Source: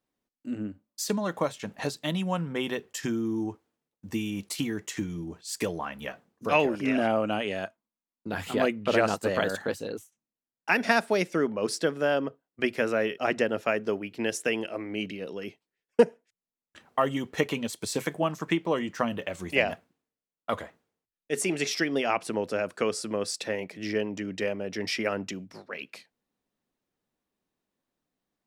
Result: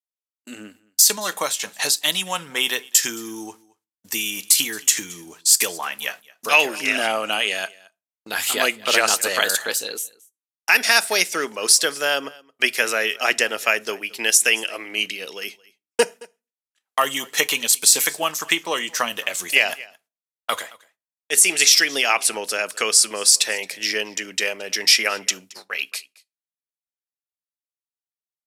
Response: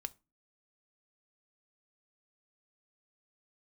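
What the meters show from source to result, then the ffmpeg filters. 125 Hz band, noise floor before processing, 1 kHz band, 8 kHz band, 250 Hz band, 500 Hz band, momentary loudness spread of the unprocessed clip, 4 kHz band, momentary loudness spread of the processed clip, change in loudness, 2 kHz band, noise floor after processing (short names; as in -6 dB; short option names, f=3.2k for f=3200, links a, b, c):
under -10 dB, under -85 dBFS, +5.5 dB, +21.5 dB, -6.0 dB, 0.0 dB, 13 LU, +17.0 dB, 14 LU, +10.0 dB, +11.0 dB, under -85 dBFS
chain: -filter_complex "[0:a]agate=range=-34dB:threshold=-45dB:ratio=16:detection=peak,aderivative,aecho=1:1:221:0.0668,asplit=2[a][b];[1:a]atrim=start_sample=2205[c];[b][c]afir=irnorm=-1:irlink=0,volume=2.5dB[d];[a][d]amix=inputs=2:normalize=0,aresample=32000,aresample=44100,alimiter=level_in=18dB:limit=-1dB:release=50:level=0:latency=1,volume=-1dB"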